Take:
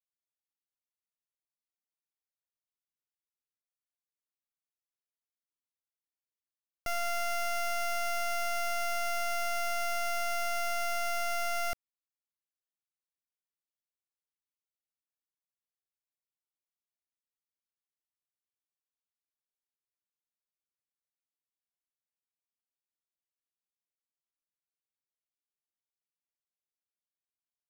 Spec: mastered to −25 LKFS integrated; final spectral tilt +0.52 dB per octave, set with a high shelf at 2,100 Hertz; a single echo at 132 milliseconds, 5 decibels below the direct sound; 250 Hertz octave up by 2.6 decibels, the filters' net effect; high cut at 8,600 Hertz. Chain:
low-pass filter 8,600 Hz
parametric band 250 Hz +4 dB
high-shelf EQ 2,100 Hz +5 dB
single-tap delay 132 ms −5 dB
level +5 dB

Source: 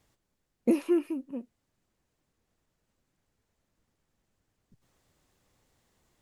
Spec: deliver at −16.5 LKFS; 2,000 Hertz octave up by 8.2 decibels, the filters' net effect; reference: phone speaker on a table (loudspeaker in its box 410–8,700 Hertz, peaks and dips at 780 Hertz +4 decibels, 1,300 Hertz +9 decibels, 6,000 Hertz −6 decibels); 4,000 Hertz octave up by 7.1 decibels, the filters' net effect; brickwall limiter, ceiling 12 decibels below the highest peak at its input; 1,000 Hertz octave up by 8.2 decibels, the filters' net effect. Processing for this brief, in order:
parametric band 1,000 Hz +3.5 dB
parametric band 2,000 Hz +6 dB
parametric band 4,000 Hz +7.5 dB
brickwall limiter −25.5 dBFS
loudspeaker in its box 410–8,700 Hz, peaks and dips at 780 Hz +4 dB, 1,300 Hz +9 dB, 6,000 Hz −6 dB
level +25 dB

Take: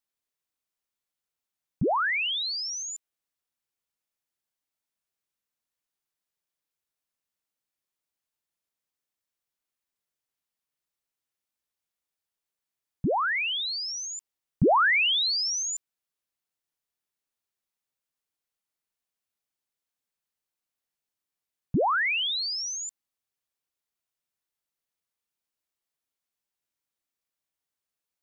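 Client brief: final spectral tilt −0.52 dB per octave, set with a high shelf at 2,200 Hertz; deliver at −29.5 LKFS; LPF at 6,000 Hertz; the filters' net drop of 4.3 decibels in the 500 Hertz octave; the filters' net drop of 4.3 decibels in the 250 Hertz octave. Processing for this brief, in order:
low-pass filter 6,000 Hz
parametric band 250 Hz −4.5 dB
parametric band 500 Hz −5 dB
high-shelf EQ 2,200 Hz +8 dB
level −7.5 dB

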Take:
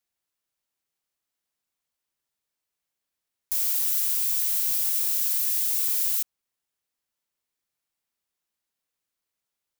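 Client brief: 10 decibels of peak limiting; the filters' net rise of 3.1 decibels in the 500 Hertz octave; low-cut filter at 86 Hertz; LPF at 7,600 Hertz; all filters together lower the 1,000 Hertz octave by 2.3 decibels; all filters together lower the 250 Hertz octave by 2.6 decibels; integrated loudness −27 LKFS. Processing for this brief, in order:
high-pass filter 86 Hz
low-pass filter 7,600 Hz
parametric band 250 Hz −7 dB
parametric band 500 Hz +7 dB
parametric band 1,000 Hz −4.5 dB
level +14.5 dB
brickwall limiter −20 dBFS

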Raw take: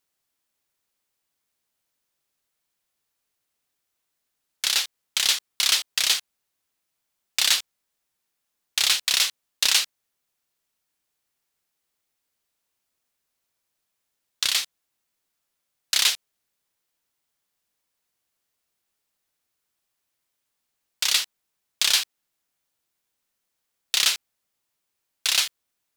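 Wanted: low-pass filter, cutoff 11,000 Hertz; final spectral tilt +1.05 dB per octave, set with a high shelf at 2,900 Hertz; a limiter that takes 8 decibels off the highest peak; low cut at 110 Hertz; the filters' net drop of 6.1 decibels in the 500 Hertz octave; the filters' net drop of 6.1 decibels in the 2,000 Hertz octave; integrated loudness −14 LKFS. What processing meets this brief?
high-pass filter 110 Hz
low-pass filter 11,000 Hz
parametric band 500 Hz −7.5 dB
parametric band 2,000 Hz −3.5 dB
high-shelf EQ 2,900 Hz −8.5 dB
level +19 dB
brickwall limiter −0.5 dBFS

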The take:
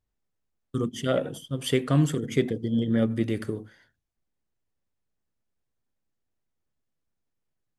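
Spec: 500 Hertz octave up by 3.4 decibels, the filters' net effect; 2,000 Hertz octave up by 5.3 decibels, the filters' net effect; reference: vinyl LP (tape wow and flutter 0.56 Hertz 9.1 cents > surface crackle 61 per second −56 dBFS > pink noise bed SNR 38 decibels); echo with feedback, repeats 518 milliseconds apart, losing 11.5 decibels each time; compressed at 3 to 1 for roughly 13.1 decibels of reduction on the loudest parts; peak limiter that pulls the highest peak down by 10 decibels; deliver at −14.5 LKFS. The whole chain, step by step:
parametric band 500 Hz +4 dB
parametric band 2,000 Hz +6 dB
downward compressor 3 to 1, threshold −34 dBFS
brickwall limiter −29.5 dBFS
repeating echo 518 ms, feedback 27%, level −11.5 dB
tape wow and flutter 0.56 Hz 9.1 cents
surface crackle 61 per second −56 dBFS
pink noise bed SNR 38 dB
level +25.5 dB

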